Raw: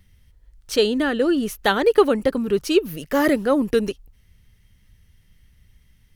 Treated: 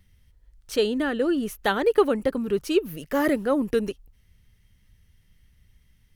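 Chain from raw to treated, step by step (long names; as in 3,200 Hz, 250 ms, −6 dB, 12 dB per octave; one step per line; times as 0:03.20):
dynamic equaliser 4,800 Hz, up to −4 dB, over −43 dBFS, Q 1
level −4 dB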